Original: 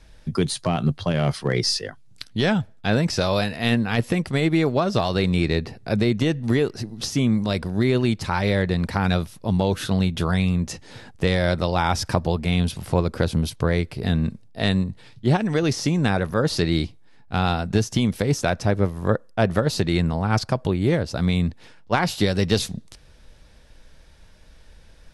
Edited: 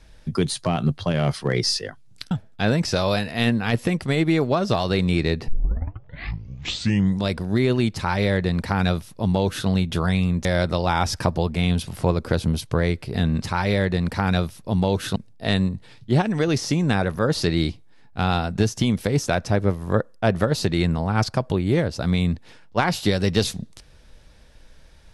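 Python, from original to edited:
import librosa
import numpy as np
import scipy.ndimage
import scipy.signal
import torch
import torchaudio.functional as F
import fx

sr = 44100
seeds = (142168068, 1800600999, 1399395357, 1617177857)

y = fx.edit(x, sr, fx.cut(start_s=2.31, length_s=0.25),
    fx.tape_start(start_s=5.73, length_s=1.81),
    fx.duplicate(start_s=8.19, length_s=1.74, to_s=14.31),
    fx.cut(start_s=10.7, length_s=0.64), tone=tone)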